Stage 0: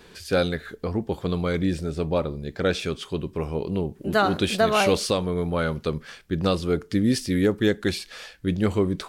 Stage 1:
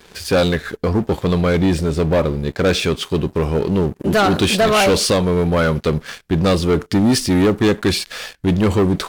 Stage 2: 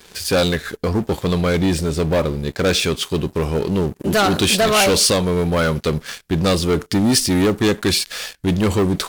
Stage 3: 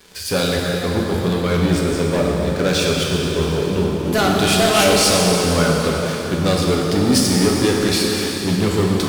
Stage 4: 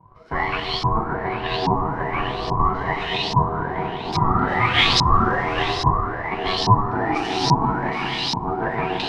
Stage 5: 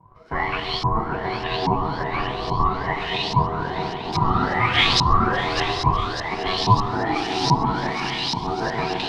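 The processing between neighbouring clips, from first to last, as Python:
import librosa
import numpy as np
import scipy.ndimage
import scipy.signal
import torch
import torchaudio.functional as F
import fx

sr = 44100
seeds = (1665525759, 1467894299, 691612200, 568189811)

y1 = fx.leveller(x, sr, passes=3)
y2 = fx.high_shelf(y1, sr, hz=3800.0, db=8.5)
y2 = F.gain(torch.from_numpy(y2), -2.0).numpy()
y3 = fx.rev_plate(y2, sr, seeds[0], rt60_s=4.3, hf_ratio=0.8, predelay_ms=0, drr_db=-2.5)
y3 = F.gain(torch.from_numpy(y3), -3.5).numpy()
y4 = fx.filter_lfo_lowpass(y3, sr, shape='saw_up', hz=1.2, low_hz=390.0, high_hz=4900.0, q=7.2)
y4 = y4 * np.sin(2.0 * np.pi * 560.0 * np.arange(len(y4)) / sr)
y4 = F.gain(torch.from_numpy(y4), -5.0).numpy()
y5 = fx.echo_wet_highpass(y4, sr, ms=600, feedback_pct=74, hz=4000.0, wet_db=-9.0)
y5 = F.gain(torch.from_numpy(y5), -1.0).numpy()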